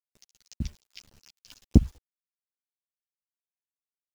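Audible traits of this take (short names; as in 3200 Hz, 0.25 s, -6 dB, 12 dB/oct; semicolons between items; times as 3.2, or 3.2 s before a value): a quantiser's noise floor 8-bit, dither none; chopped level 4 Hz, depth 60%, duty 10%; a shimmering, thickened sound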